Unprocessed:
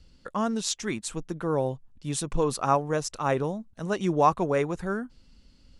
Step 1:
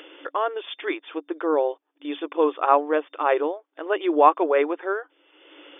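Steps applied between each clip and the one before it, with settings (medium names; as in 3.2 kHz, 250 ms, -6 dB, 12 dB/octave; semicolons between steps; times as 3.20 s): FFT band-pass 290–3600 Hz; upward compressor, threshold -36 dBFS; trim +5.5 dB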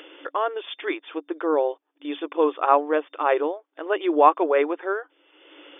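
no audible change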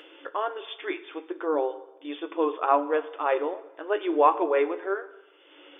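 flange 0.46 Hz, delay 8.6 ms, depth 2.9 ms, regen +57%; plate-style reverb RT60 1 s, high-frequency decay 0.9×, DRR 12 dB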